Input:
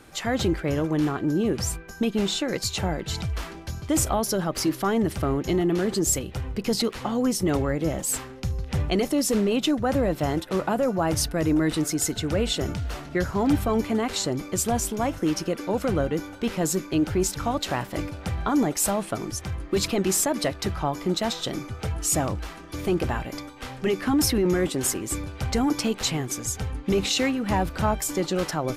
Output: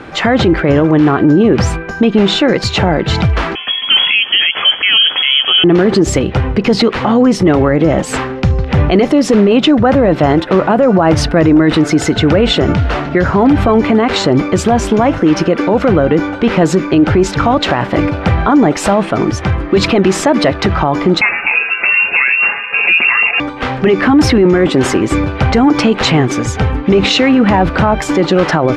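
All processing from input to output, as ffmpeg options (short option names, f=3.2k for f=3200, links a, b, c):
-filter_complex "[0:a]asettb=1/sr,asplit=3[a][b][c];[a]atrim=end=3.554[d];[b]atrim=start=3.55:end=5.64,asetpts=PTS-STARTPTS,afade=t=in:d=0.004:c=qsin,afade=t=out:st=2.086:d=0.004:c=qsin,equalizer=f=880:w=7.6:g=7.5,lowpass=f=2.9k:t=q:w=0.5098,lowpass=f=2.9k:t=q:w=0.6013,lowpass=f=2.9k:t=q:w=0.9,lowpass=f=2.9k:t=q:w=2.563,afreqshift=-3400[e];[c]atrim=start=5.636[f];[d][e]acrossfade=d=0.004:c1=hsin:c2=qsin[g];[g][f]acrossfade=d=0.004:c1=qsin:c2=hsin,asettb=1/sr,asplit=3[h][i][j];[h]atrim=end=21.214[k];[i]atrim=start=21.21:end=23.4,asetpts=PTS-STARTPTS,afade=t=in:d=0.004:c=qsin,afade=t=out:st=2.186:d=0.004:c=qsin,aecho=1:1:6.2:0.49,atrim=end_sample=96579,asubboost=boost=4.5:cutoff=100,lowpass=f=2.4k:t=q:w=0.5098,lowpass=f=2.4k:t=q:w=0.6013,lowpass=f=2.4k:t=q:w=0.9,lowpass=f=2.4k:t=q:w=2.563,afreqshift=-2800[l];[j]atrim=start=23.396[m];[k][l]acrossfade=d=0.004:c1=hsin:c2=qsin[n];[n][m]acrossfade=d=0.004:c1=qsin:c2=hsin,lowpass=2.6k,lowshelf=f=72:g=-11,alimiter=level_in=22dB:limit=-1dB:release=50:level=0:latency=1,volume=-1dB"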